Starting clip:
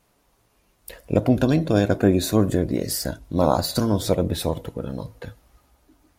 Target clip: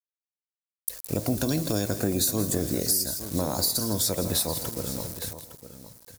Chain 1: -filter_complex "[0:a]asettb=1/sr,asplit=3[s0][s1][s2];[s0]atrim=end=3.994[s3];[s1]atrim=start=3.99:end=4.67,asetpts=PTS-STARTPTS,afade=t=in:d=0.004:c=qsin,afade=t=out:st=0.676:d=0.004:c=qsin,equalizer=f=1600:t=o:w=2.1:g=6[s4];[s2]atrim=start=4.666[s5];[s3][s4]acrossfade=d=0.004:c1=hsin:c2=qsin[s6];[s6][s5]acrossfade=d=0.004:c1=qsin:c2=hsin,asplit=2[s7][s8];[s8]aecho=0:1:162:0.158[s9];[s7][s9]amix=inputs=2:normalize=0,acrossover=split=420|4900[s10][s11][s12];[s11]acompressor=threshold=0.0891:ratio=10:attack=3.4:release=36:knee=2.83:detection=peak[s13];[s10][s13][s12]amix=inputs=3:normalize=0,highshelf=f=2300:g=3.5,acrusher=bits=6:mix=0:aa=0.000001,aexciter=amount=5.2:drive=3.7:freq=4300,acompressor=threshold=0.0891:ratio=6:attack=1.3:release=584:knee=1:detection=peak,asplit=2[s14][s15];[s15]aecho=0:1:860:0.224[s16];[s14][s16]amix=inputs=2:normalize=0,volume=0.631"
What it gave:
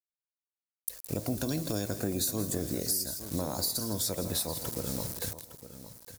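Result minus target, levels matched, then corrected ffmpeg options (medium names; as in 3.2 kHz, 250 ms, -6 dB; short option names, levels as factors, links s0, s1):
compression: peak gain reduction +6 dB
-filter_complex "[0:a]asettb=1/sr,asplit=3[s0][s1][s2];[s0]atrim=end=3.994[s3];[s1]atrim=start=3.99:end=4.67,asetpts=PTS-STARTPTS,afade=t=in:d=0.004:c=qsin,afade=t=out:st=0.676:d=0.004:c=qsin,equalizer=f=1600:t=o:w=2.1:g=6[s4];[s2]atrim=start=4.666[s5];[s3][s4]acrossfade=d=0.004:c1=hsin:c2=qsin[s6];[s6][s5]acrossfade=d=0.004:c1=qsin:c2=hsin,asplit=2[s7][s8];[s8]aecho=0:1:162:0.158[s9];[s7][s9]amix=inputs=2:normalize=0,acrossover=split=420|4900[s10][s11][s12];[s11]acompressor=threshold=0.0891:ratio=10:attack=3.4:release=36:knee=2.83:detection=peak[s13];[s10][s13][s12]amix=inputs=3:normalize=0,highshelf=f=2300:g=3.5,acrusher=bits=6:mix=0:aa=0.000001,aexciter=amount=5.2:drive=3.7:freq=4300,acompressor=threshold=0.2:ratio=6:attack=1.3:release=584:knee=1:detection=peak,asplit=2[s14][s15];[s15]aecho=0:1:860:0.224[s16];[s14][s16]amix=inputs=2:normalize=0,volume=0.631"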